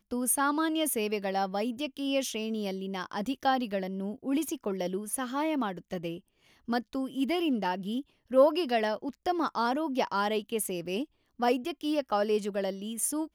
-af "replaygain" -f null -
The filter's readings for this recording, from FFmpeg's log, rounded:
track_gain = +11.5 dB
track_peak = 0.192